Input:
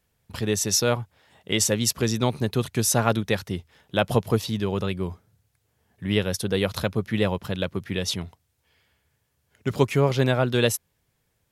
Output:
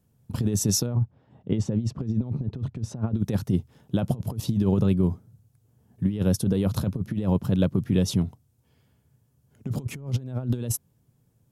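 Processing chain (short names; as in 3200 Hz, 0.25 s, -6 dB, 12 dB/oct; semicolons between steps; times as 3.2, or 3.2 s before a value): graphic EQ 125/250/2000/4000 Hz +12/+9/-9/-5 dB; negative-ratio compressor -18 dBFS, ratio -0.5; 0.86–3.17 tape spacing loss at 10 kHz 29 dB; gain -5 dB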